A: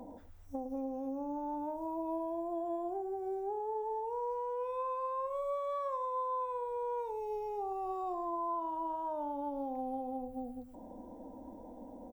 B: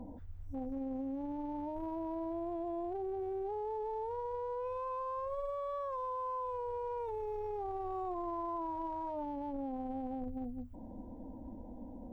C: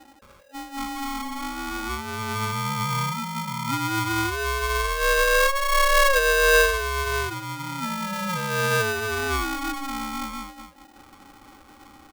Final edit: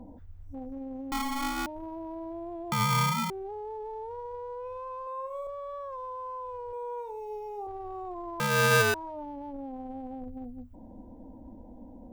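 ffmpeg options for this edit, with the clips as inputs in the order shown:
-filter_complex "[2:a]asplit=3[a][b][c];[0:a]asplit=2[d][e];[1:a]asplit=6[f][g][h][i][j][k];[f]atrim=end=1.122[l];[a]atrim=start=1.118:end=1.662[m];[g]atrim=start=1.658:end=2.722[n];[b]atrim=start=2.718:end=3.302[o];[h]atrim=start=3.298:end=5.072[p];[d]atrim=start=5.068:end=5.472[q];[i]atrim=start=5.468:end=6.732[r];[e]atrim=start=6.728:end=7.672[s];[j]atrim=start=7.668:end=8.402[t];[c]atrim=start=8.398:end=8.942[u];[k]atrim=start=8.938[v];[l][m]acrossfade=d=0.004:c1=hsin:c2=hsin[w];[w][n]acrossfade=d=0.004:c1=hsin:c2=hsin[x];[x][o]acrossfade=d=0.004:c1=hsin:c2=hsin[y];[y][p]acrossfade=d=0.004:c1=hsin:c2=hsin[z];[z][q]acrossfade=d=0.004:c1=hsin:c2=hsin[aa];[aa][r]acrossfade=d=0.004:c1=hsin:c2=hsin[ab];[ab][s]acrossfade=d=0.004:c1=hsin:c2=hsin[ac];[ac][t]acrossfade=d=0.004:c1=hsin:c2=hsin[ad];[ad][u]acrossfade=d=0.004:c1=hsin:c2=hsin[ae];[ae][v]acrossfade=d=0.004:c1=hsin:c2=hsin"

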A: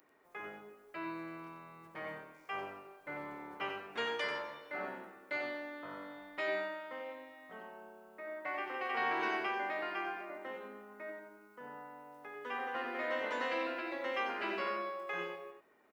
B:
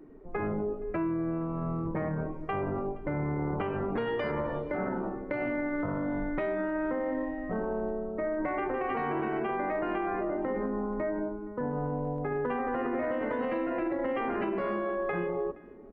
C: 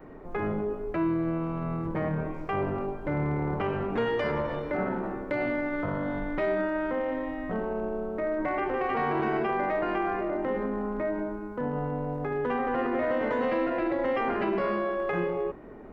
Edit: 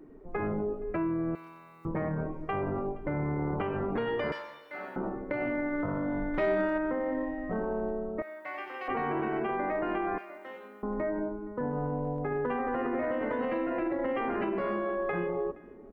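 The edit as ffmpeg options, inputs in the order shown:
-filter_complex "[0:a]asplit=4[a][b][c][d];[1:a]asplit=6[e][f][g][h][i][j];[e]atrim=end=1.352[k];[a]atrim=start=1.348:end=1.852[l];[f]atrim=start=1.848:end=4.322[m];[b]atrim=start=4.318:end=4.962[n];[g]atrim=start=4.958:end=6.342[o];[2:a]atrim=start=6.338:end=6.782[p];[h]atrim=start=6.778:end=8.222[q];[c]atrim=start=8.218:end=8.882[r];[i]atrim=start=8.878:end=10.182[s];[d]atrim=start=10.178:end=10.832[t];[j]atrim=start=10.828[u];[k][l]acrossfade=d=0.004:c1=hsin:c2=hsin[v];[v][m]acrossfade=d=0.004:c1=hsin:c2=hsin[w];[w][n]acrossfade=d=0.004:c1=hsin:c2=hsin[x];[x][o]acrossfade=d=0.004:c1=hsin:c2=hsin[y];[y][p]acrossfade=d=0.004:c1=hsin:c2=hsin[z];[z][q]acrossfade=d=0.004:c1=hsin:c2=hsin[aa];[aa][r]acrossfade=d=0.004:c1=hsin:c2=hsin[ab];[ab][s]acrossfade=d=0.004:c1=hsin:c2=hsin[ac];[ac][t]acrossfade=d=0.004:c1=hsin:c2=hsin[ad];[ad][u]acrossfade=d=0.004:c1=hsin:c2=hsin"

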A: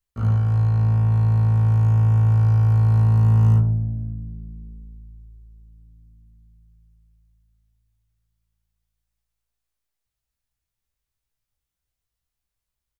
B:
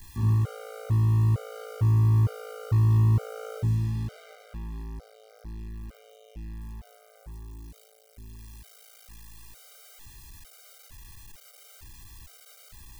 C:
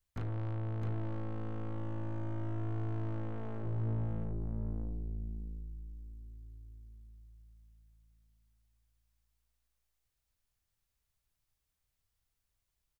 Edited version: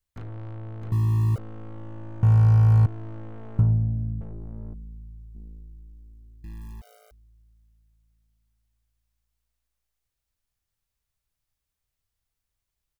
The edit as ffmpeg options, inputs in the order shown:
-filter_complex "[1:a]asplit=2[a][b];[0:a]asplit=3[c][d][e];[2:a]asplit=6[f][g][h][i][j][k];[f]atrim=end=0.922[l];[a]atrim=start=0.918:end=1.382[m];[g]atrim=start=1.378:end=2.232[n];[c]atrim=start=2.228:end=2.862[o];[h]atrim=start=2.858:end=3.592[p];[d]atrim=start=3.588:end=4.212[q];[i]atrim=start=4.208:end=4.742[r];[e]atrim=start=4.738:end=5.352[s];[j]atrim=start=5.348:end=6.442[t];[b]atrim=start=6.438:end=7.112[u];[k]atrim=start=7.108[v];[l][m]acrossfade=d=0.004:c1=hsin:c2=hsin[w];[w][n]acrossfade=d=0.004:c1=hsin:c2=hsin[x];[x][o]acrossfade=d=0.004:c1=hsin:c2=hsin[y];[y][p]acrossfade=d=0.004:c1=hsin:c2=hsin[z];[z][q]acrossfade=d=0.004:c1=hsin:c2=hsin[aa];[aa][r]acrossfade=d=0.004:c1=hsin:c2=hsin[ab];[ab][s]acrossfade=d=0.004:c1=hsin:c2=hsin[ac];[ac][t]acrossfade=d=0.004:c1=hsin:c2=hsin[ad];[ad][u]acrossfade=d=0.004:c1=hsin:c2=hsin[ae];[ae][v]acrossfade=d=0.004:c1=hsin:c2=hsin"

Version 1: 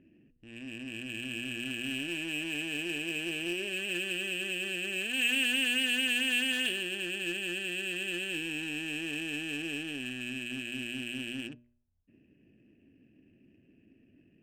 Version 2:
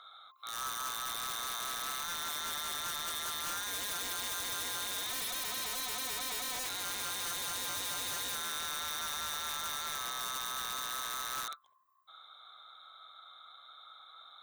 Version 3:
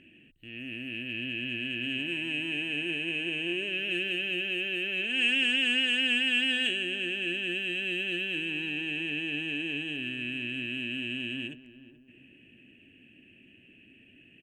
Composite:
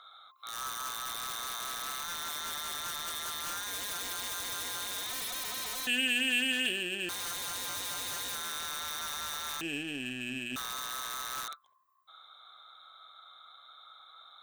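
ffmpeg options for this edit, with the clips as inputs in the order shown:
-filter_complex "[0:a]asplit=2[a][b];[1:a]asplit=3[c][d][e];[c]atrim=end=5.872[f];[a]atrim=start=5.868:end=7.092[g];[d]atrim=start=7.088:end=9.612[h];[b]atrim=start=9.608:end=10.562[i];[e]atrim=start=10.558[j];[f][g]acrossfade=d=0.004:c1=hsin:c2=hsin[k];[k][h]acrossfade=d=0.004:c1=hsin:c2=hsin[l];[l][i]acrossfade=d=0.004:c1=hsin:c2=hsin[m];[m][j]acrossfade=d=0.004:c1=hsin:c2=hsin"

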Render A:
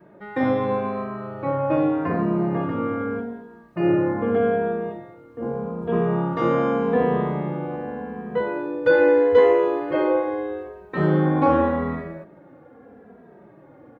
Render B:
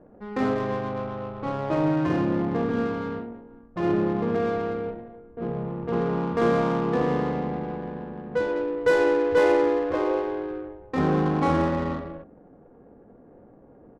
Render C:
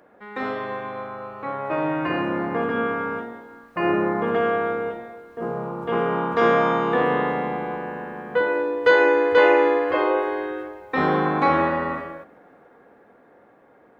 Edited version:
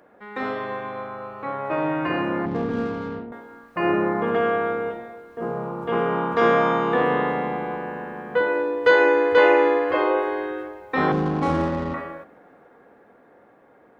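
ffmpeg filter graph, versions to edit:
-filter_complex "[1:a]asplit=2[a][b];[2:a]asplit=3[c][d][e];[c]atrim=end=2.462[f];[a]atrim=start=2.458:end=3.322[g];[d]atrim=start=3.318:end=11.122[h];[b]atrim=start=11.118:end=11.942[i];[e]atrim=start=11.938[j];[f][g]acrossfade=d=0.004:c1=hsin:c2=hsin[k];[k][h]acrossfade=d=0.004:c1=hsin:c2=hsin[l];[l][i]acrossfade=d=0.004:c1=hsin:c2=hsin[m];[m][j]acrossfade=d=0.004:c1=hsin:c2=hsin"

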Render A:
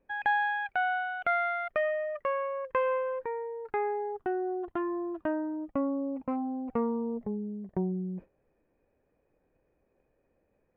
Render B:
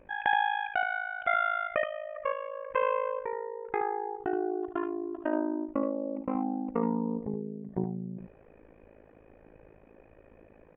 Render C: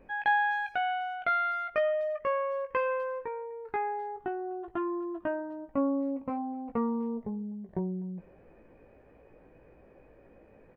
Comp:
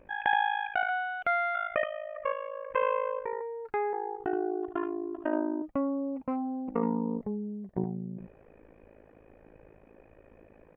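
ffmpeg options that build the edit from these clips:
-filter_complex "[0:a]asplit=4[a][b][c][d];[1:a]asplit=5[e][f][g][h][i];[e]atrim=end=0.892[j];[a]atrim=start=0.888:end=1.552[k];[f]atrim=start=1.548:end=3.412[l];[b]atrim=start=3.408:end=3.932[m];[g]atrim=start=3.928:end=5.622[n];[c]atrim=start=5.618:end=6.682[o];[h]atrim=start=6.678:end=7.212[p];[d]atrim=start=7.208:end=7.752[q];[i]atrim=start=7.748[r];[j][k]acrossfade=d=0.004:c1=hsin:c2=hsin[s];[s][l]acrossfade=d=0.004:c1=hsin:c2=hsin[t];[t][m]acrossfade=d=0.004:c1=hsin:c2=hsin[u];[u][n]acrossfade=d=0.004:c1=hsin:c2=hsin[v];[v][o]acrossfade=d=0.004:c1=hsin:c2=hsin[w];[w][p]acrossfade=d=0.004:c1=hsin:c2=hsin[x];[x][q]acrossfade=d=0.004:c1=hsin:c2=hsin[y];[y][r]acrossfade=d=0.004:c1=hsin:c2=hsin"

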